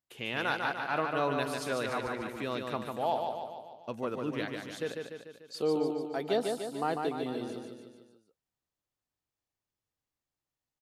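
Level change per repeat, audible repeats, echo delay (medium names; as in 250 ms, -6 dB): -5.0 dB, 5, 147 ms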